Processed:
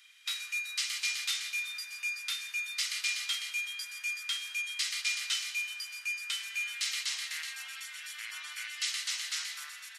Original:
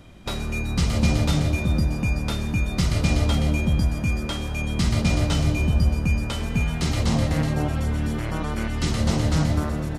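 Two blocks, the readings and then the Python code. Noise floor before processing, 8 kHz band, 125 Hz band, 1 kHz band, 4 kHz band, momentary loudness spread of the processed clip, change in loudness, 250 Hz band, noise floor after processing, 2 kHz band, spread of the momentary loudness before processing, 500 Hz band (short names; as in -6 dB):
-29 dBFS, 0.0 dB, under -40 dB, -19.5 dB, 0.0 dB, 8 LU, -10.0 dB, under -40 dB, -48 dBFS, -1.5 dB, 6 LU, under -40 dB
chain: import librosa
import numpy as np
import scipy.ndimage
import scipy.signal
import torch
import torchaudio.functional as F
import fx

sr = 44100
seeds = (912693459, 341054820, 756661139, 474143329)

y = scipy.signal.sosfilt(scipy.signal.cheby2(4, 70, 420.0, 'highpass', fs=sr, output='sos'), x)
y = fx.quant_float(y, sr, bits=6)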